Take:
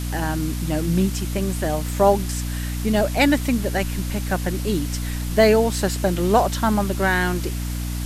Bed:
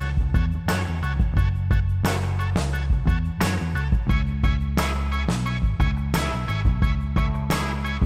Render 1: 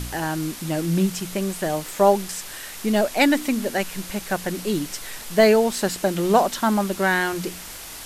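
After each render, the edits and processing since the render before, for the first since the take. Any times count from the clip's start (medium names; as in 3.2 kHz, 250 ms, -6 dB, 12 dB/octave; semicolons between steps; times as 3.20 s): de-hum 60 Hz, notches 5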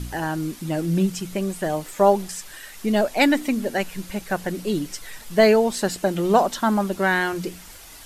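noise reduction 8 dB, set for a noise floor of -37 dBFS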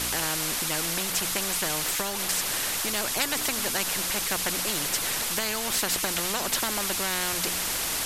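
compression, threshold -18 dBFS, peak gain reduction 8 dB; spectrum-flattening compressor 4:1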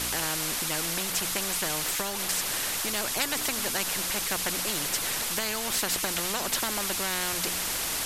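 trim -1.5 dB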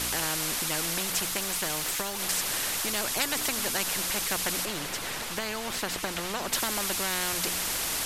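1.25–2.22 s: companding laws mixed up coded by A; 4.65–6.53 s: treble shelf 4.7 kHz -9.5 dB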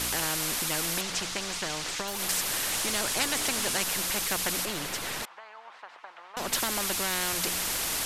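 1.01–2.08 s: Chebyshev low-pass 5.9 kHz; 2.71–3.84 s: one-bit delta coder 64 kbps, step -24 dBFS; 5.25–6.37 s: ladder band-pass 1.1 kHz, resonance 35%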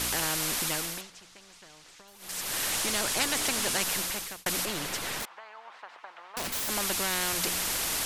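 0.68–2.63 s: dip -19.5 dB, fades 0.43 s; 3.96–4.46 s: fade out; 5.20–6.69 s: integer overflow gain 26.5 dB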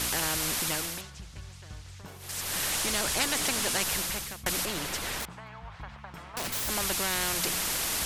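add bed -24.5 dB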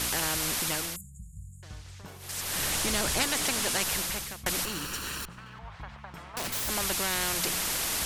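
0.96–1.63 s: brick-wall FIR band-stop 210–6700 Hz; 2.58–3.23 s: bass shelf 340 Hz +5.5 dB; 4.64–5.59 s: comb filter that takes the minimum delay 0.7 ms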